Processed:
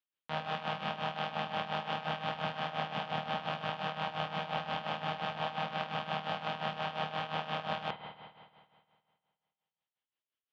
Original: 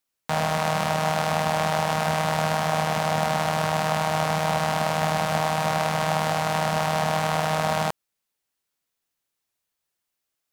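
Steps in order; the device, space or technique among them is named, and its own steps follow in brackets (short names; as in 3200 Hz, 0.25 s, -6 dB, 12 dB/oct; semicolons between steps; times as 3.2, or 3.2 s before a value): combo amplifier with spring reverb and tremolo (spring tank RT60 2 s, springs 52 ms, chirp 50 ms, DRR 3 dB; tremolo 5.7 Hz, depth 75%; speaker cabinet 110–3900 Hz, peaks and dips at 150 Hz -3 dB, 690 Hz -4 dB, 3100 Hz +7 dB); gain -9 dB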